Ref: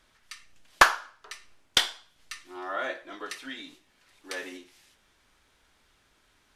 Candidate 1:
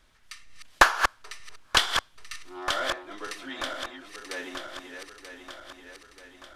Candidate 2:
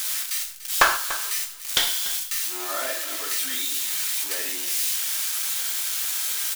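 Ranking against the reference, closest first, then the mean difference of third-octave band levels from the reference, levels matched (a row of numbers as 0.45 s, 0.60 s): 1, 2; 5.5 dB, 11.5 dB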